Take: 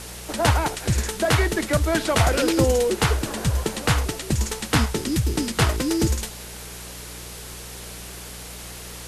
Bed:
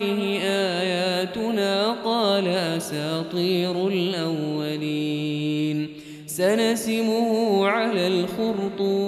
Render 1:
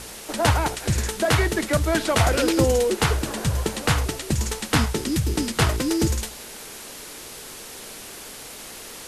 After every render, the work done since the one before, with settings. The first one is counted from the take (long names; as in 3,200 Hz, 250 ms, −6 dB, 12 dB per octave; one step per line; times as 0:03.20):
hum removal 60 Hz, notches 3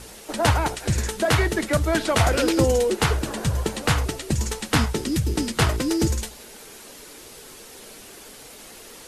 broadband denoise 6 dB, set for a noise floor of −39 dBFS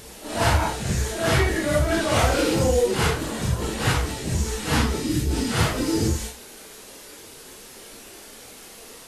random phases in long frames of 200 ms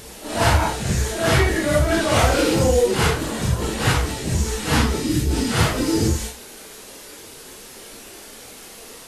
level +3 dB